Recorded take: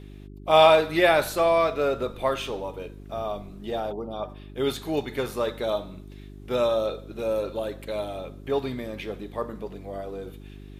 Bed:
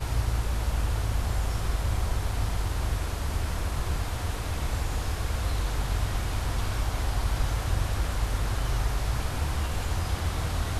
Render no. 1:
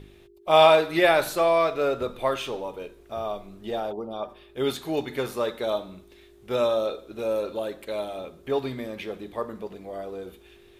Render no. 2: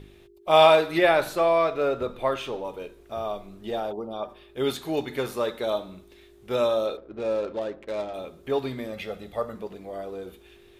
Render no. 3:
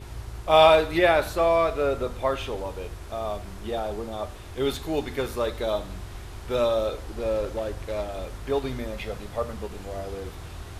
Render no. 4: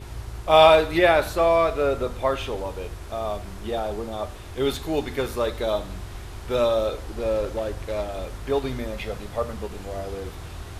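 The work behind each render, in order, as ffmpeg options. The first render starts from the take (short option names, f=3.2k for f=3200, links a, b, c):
-af "bandreject=f=50:t=h:w=4,bandreject=f=100:t=h:w=4,bandreject=f=150:t=h:w=4,bandreject=f=200:t=h:w=4,bandreject=f=250:t=h:w=4,bandreject=f=300:t=h:w=4"
-filter_complex "[0:a]asettb=1/sr,asplit=3[a][b][c];[a]atrim=end=0.984[d];[b]atrim=start=0.98:end=2.65,asetpts=PTS-STARTPTS,afade=t=in:d=0.004:c=qsin,afade=t=out:st=1.666:d=0.004:c=qsin,highshelf=f=4.1k:g=-7[e];[c]atrim=start=2.646[f];[d][e]acrossfade=d=0.004:c1=hsin:c2=qsin[g];[g][f]acrossfade=d=0.004:c1=qsin:c2=hsin,asettb=1/sr,asplit=3[h][i][j];[h]atrim=end=6.974[k];[i]atrim=start=6.97:end=8.14,asetpts=PTS-STARTPTS,afade=t=in:d=0.004:c=qsin,afade=t=out:st=1.166:d=0.004:c=qsin,adynamicsmooth=sensitivity=7.5:basefreq=920[l];[j]atrim=start=8.136[m];[k][l]acrossfade=d=0.004:c1=hsin:c2=qsin[n];[n][m]acrossfade=d=0.004:c1=qsin:c2=hsin,asettb=1/sr,asplit=3[o][p][q];[o]atrim=end=8.924[r];[p]atrim=start=8.92:end=9.55,asetpts=PTS-STARTPTS,afade=t=in:d=0.004:c=qsin,afade=t=out:st=0.626:d=0.004:c=qsin,aecho=1:1:1.5:0.62,atrim=end_sample=27783[s];[q]atrim=start=9.546[t];[r][s]acrossfade=d=0.004:c1=hsin:c2=qsin[u];[u][t]acrossfade=d=0.004:c1=qsin:c2=hsin"
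-filter_complex "[1:a]volume=-10.5dB[a];[0:a][a]amix=inputs=2:normalize=0"
-af "volume=2dB"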